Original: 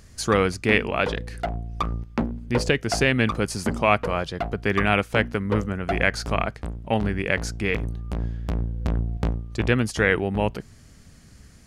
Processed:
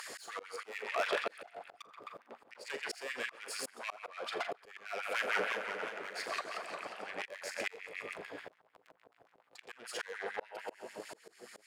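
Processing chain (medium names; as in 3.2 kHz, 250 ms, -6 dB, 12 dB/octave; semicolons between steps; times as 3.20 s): two-band feedback delay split 370 Hz, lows 569 ms, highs 131 ms, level -13 dB; compression 5:1, threshold -34 dBFS, peak gain reduction 18.5 dB; bass shelf 72 Hz -7.5 dB; band-stop 6 kHz, Q 7; valve stage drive 36 dB, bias 0.3; flutter echo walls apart 7.1 m, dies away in 0.25 s; LFO high-pass sine 6.8 Hz 450–2200 Hz; slow attack 593 ms; bass shelf 330 Hz -3.5 dB; 4.99–7.22 s: modulated delay 178 ms, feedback 62%, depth 203 cents, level -5.5 dB; trim +11 dB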